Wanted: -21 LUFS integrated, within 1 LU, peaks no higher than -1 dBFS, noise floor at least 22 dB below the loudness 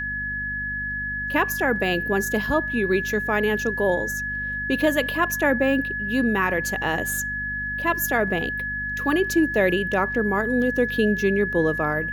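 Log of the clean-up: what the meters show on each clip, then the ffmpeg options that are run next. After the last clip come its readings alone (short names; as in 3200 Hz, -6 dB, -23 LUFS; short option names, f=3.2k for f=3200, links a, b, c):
hum 50 Hz; harmonics up to 250 Hz; hum level -34 dBFS; steady tone 1700 Hz; tone level -26 dBFS; loudness -23.0 LUFS; peak -7.5 dBFS; loudness target -21.0 LUFS
-> -af "bandreject=f=50:t=h:w=4,bandreject=f=100:t=h:w=4,bandreject=f=150:t=h:w=4,bandreject=f=200:t=h:w=4,bandreject=f=250:t=h:w=4"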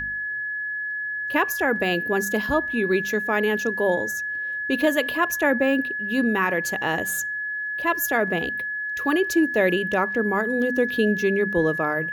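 hum none; steady tone 1700 Hz; tone level -26 dBFS
-> -af "bandreject=f=1.7k:w=30"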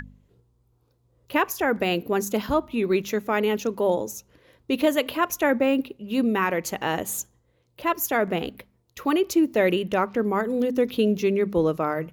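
steady tone none; loudness -24.5 LUFS; peak -9.0 dBFS; loudness target -21.0 LUFS
-> -af "volume=3.5dB"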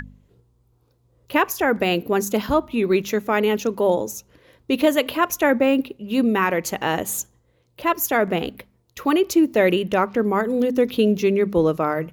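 loudness -21.0 LUFS; peak -5.5 dBFS; noise floor -63 dBFS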